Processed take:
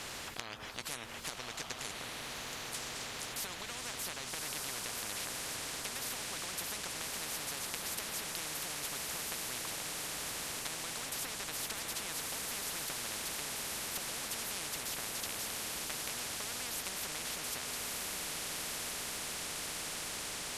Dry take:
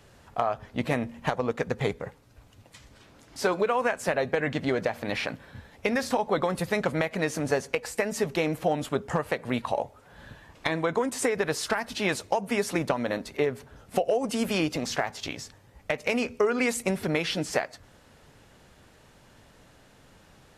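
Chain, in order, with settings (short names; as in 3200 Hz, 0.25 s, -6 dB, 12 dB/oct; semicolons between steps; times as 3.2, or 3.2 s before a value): compressor 2:1, threshold -40 dBFS, peak gain reduction 11.5 dB; on a send: diffused feedback echo 1.219 s, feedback 57%, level -4 dB; on the sum: spectral compressor 10:1; gain +3.5 dB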